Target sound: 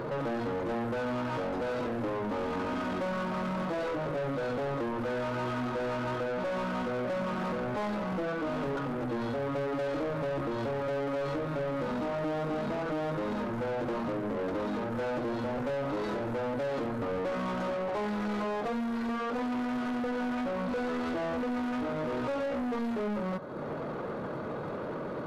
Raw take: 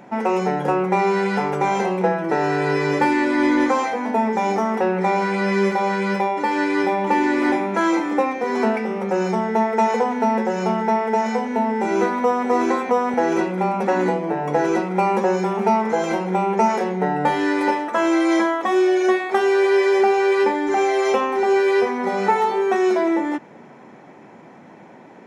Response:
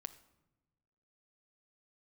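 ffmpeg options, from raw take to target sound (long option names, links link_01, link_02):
-filter_complex "[0:a]acompressor=threshold=-38dB:ratio=2.5,acrusher=bits=9:mode=log:mix=0:aa=0.000001,asplit=2[link_01][link_02];[link_02]highpass=frequency=720:poles=1,volume=28dB,asoftclip=type=tanh:threshold=-20.5dB[link_03];[link_01][link_03]amix=inputs=2:normalize=0,lowpass=frequency=5300:poles=1,volume=-6dB,asetrate=27781,aresample=44100,atempo=1.5874,asplit=2[link_04][link_05];[1:a]atrim=start_sample=2205,lowpass=2100[link_06];[link_05][link_06]afir=irnorm=-1:irlink=0,volume=-6dB[link_07];[link_04][link_07]amix=inputs=2:normalize=0,volume=-7.5dB"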